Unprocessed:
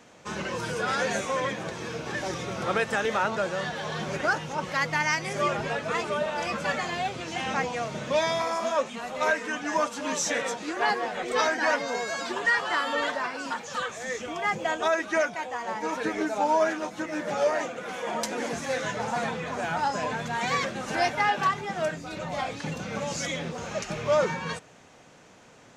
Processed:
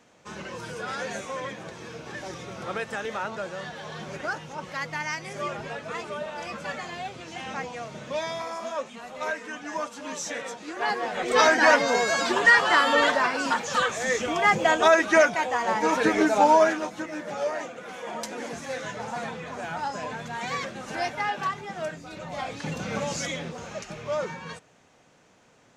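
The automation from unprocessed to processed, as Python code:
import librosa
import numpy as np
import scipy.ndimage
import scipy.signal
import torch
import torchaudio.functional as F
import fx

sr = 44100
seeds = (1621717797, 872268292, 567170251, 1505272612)

y = fx.gain(x, sr, db=fx.line((10.62, -5.5), (11.5, 7.0), (16.43, 7.0), (17.24, -4.0), (22.24, -4.0), (22.91, 3.0), (23.96, -6.0)))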